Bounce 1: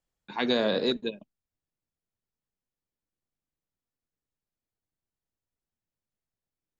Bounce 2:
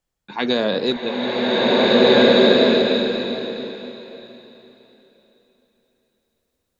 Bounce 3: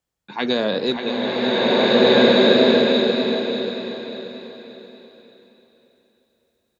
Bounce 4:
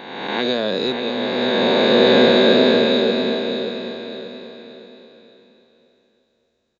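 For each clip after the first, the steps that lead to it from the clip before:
slow-attack reverb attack 1,820 ms, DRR −10 dB; level +5.5 dB
high-pass filter 50 Hz; on a send: repeating echo 584 ms, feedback 37%, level −8.5 dB; on the sum: level −1 dB
peak hold with a rise ahead of every peak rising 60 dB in 1.33 s; downsampling to 16,000 Hz; level −2 dB

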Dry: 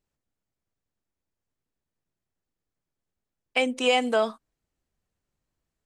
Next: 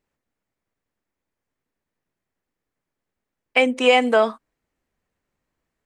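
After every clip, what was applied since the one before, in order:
octave-band graphic EQ 250/500/1,000/2,000 Hz +5/+5/+5/+8 dB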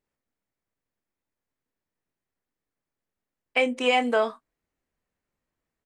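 double-tracking delay 25 ms −10 dB
level −6 dB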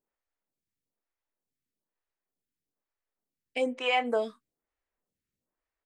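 phaser with staggered stages 1.1 Hz
level −2.5 dB

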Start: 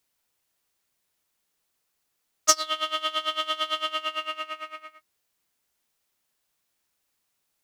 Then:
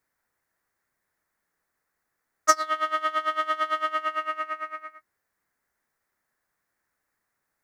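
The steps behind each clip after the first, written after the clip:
high shelf with overshoot 2,300 Hz −8 dB, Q 3
level +1.5 dB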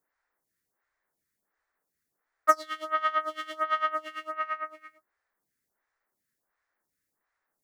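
phaser with staggered stages 1.4 Hz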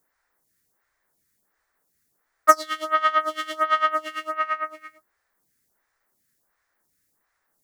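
bass and treble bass +4 dB, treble +5 dB
level +6.5 dB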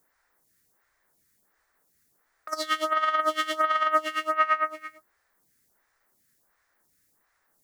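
compressor whose output falls as the input rises −21 dBFS, ratio −0.5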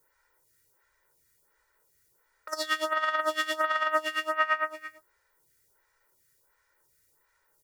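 comb filter 2.1 ms, depth 85%
level −2 dB

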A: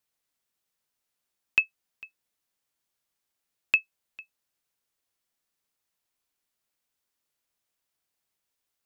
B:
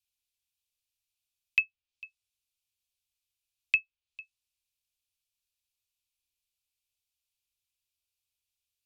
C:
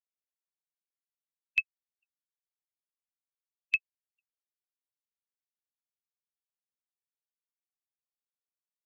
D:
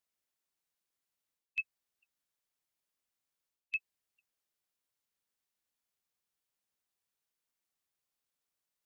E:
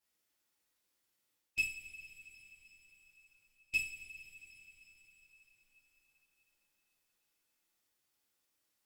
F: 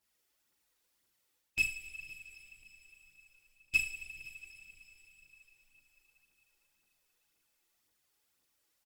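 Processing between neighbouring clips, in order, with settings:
Chebyshev band-stop filter 110–2,400 Hz, order 5; treble cut that deepens with the level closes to 2,900 Hz, closed at −33 dBFS; bass and treble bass +1 dB, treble −3 dB
spectral dynamics exaggerated over time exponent 3
reversed playback; downward compressor, threshold −35 dBFS, peak gain reduction 13.5 dB; reversed playback; brickwall limiter −33.5 dBFS, peak gain reduction 6 dB; level +7 dB
tube saturation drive 37 dB, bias 0.55; coupled-rooms reverb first 0.43 s, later 4.8 s, from −18 dB, DRR −9 dB
phase shifter 1.9 Hz, delay 2.7 ms, feedback 44%; single-tap delay 514 ms −22 dB; level +2.5 dB

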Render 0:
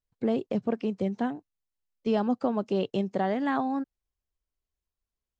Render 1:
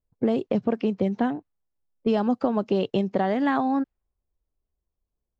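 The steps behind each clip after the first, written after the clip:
low-pass that shuts in the quiet parts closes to 710 Hz, open at −21.5 dBFS
downward compressor 3 to 1, threshold −28 dBFS, peak gain reduction 6 dB
level +8 dB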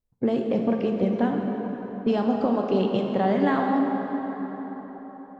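dense smooth reverb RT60 4.9 s, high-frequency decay 0.55×, DRR 1 dB
level −1.5 dB

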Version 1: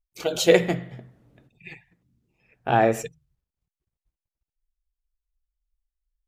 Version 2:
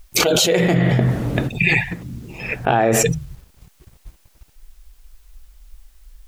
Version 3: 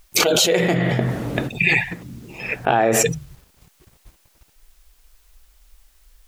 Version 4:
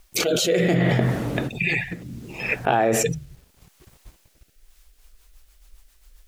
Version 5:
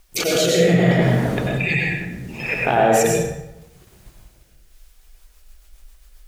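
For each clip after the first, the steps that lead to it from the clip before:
envelope flattener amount 100%; level −4 dB
low-shelf EQ 150 Hz −9.5 dB
in parallel at −2 dB: brickwall limiter −13 dBFS, peak gain reduction 11 dB; on the sum: floating-point word with a short mantissa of 6 bits; rotating-speaker cabinet horn 0.7 Hz, later 7.5 Hz, at 0:04.45; level −3.5 dB
dense smooth reverb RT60 0.88 s, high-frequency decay 0.65×, pre-delay 80 ms, DRR −1.5 dB

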